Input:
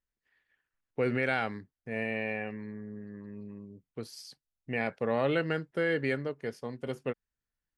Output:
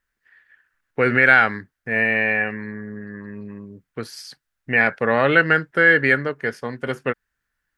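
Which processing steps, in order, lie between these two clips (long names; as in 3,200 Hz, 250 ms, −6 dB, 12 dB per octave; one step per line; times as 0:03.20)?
parametric band 1,600 Hz +13 dB 0.9 octaves
level +8.5 dB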